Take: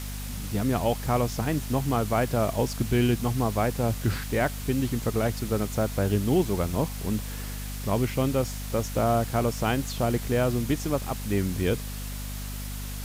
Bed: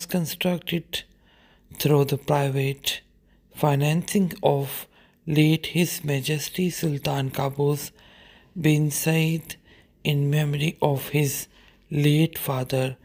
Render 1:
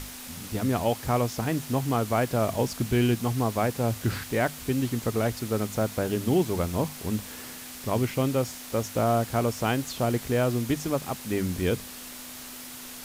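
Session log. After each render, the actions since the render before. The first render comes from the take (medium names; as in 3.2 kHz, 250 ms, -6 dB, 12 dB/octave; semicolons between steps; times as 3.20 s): hum notches 50/100/150/200 Hz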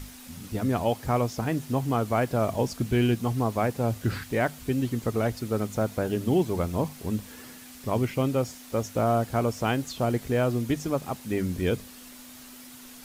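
noise reduction 7 dB, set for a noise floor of -41 dBFS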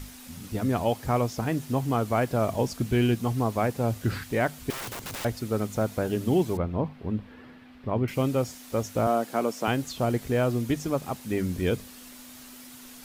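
4.70–5.25 s: integer overflow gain 31 dB; 6.57–8.08 s: distance through air 400 m; 9.07–9.68 s: high-pass 200 Hz 24 dB/octave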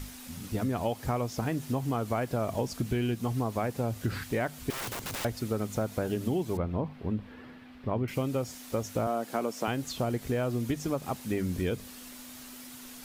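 compression, threshold -26 dBFS, peak gain reduction 8 dB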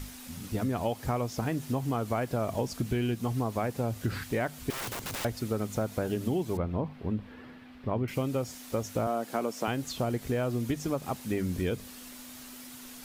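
no audible change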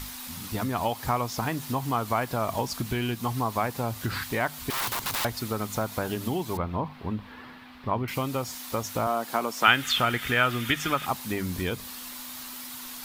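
9.63–11.06 s: time-frequency box 1.2–3.7 kHz +12 dB; ten-band graphic EQ 500 Hz -3 dB, 1 kHz +10 dB, 2 kHz +3 dB, 4 kHz +7 dB, 16 kHz +11 dB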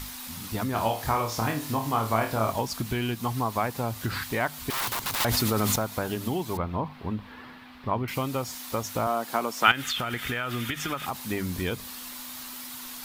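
0.71–2.52 s: flutter echo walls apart 4.6 m, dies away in 0.33 s; 5.20–5.76 s: level flattener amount 100%; 9.71–11.19 s: compression 10:1, threshold -25 dBFS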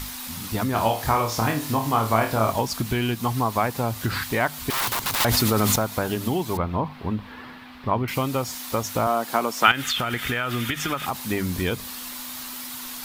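trim +4.5 dB; peak limiter -1 dBFS, peak gain reduction 3 dB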